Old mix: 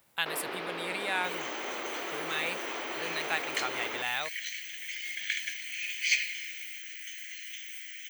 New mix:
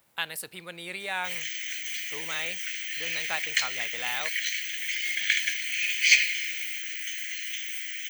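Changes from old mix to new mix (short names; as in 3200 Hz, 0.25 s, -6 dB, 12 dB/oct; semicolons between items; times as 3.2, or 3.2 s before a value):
first sound: muted; second sound +8.0 dB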